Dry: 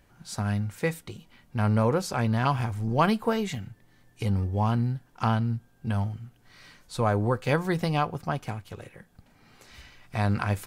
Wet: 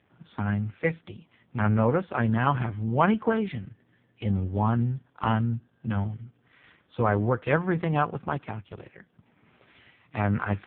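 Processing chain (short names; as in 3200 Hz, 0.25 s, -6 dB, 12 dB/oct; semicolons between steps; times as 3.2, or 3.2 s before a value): dynamic EQ 1600 Hz, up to +5 dB, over -45 dBFS, Q 3; gain +1.5 dB; AMR-NB 4.75 kbps 8000 Hz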